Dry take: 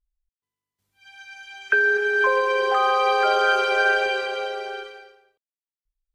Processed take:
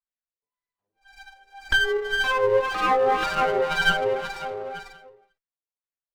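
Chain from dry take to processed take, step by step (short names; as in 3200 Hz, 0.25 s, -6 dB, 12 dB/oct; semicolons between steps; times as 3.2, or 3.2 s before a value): LFO band-pass sine 1.9 Hz 440–2200 Hz; flange 0.6 Hz, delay 3.1 ms, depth 7 ms, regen +25%; running maximum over 9 samples; gain +8 dB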